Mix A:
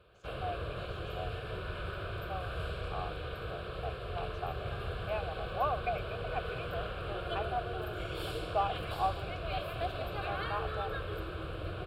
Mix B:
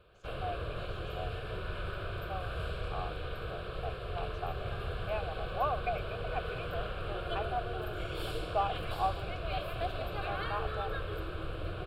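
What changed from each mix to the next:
master: remove high-pass filter 41 Hz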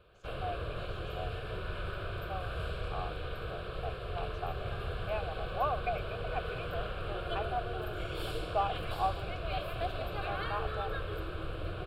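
nothing changed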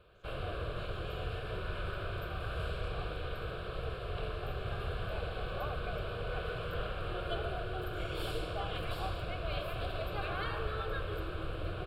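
speech −11.5 dB

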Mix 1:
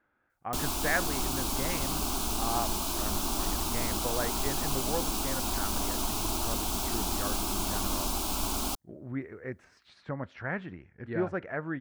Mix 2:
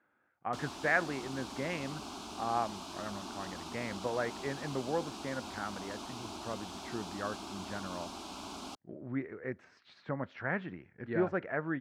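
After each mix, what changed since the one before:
background −9.0 dB
master: add band-pass filter 130–5,100 Hz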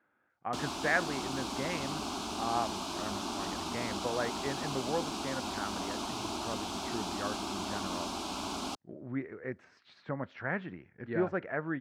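background +7.0 dB

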